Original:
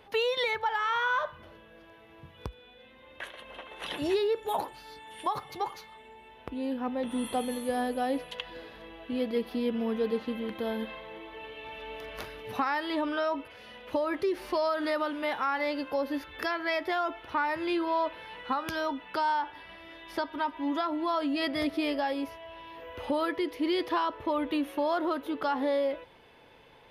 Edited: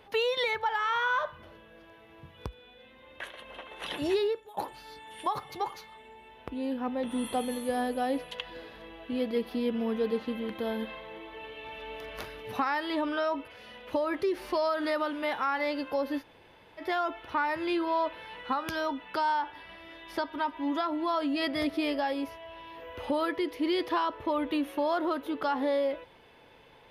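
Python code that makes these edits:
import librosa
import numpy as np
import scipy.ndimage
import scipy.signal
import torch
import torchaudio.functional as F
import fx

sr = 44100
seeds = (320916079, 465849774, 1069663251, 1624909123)

y = fx.edit(x, sr, fx.fade_out_to(start_s=4.27, length_s=0.3, curve='qua', floor_db=-22.5),
    fx.room_tone_fill(start_s=16.21, length_s=0.59, crossfade_s=0.06), tone=tone)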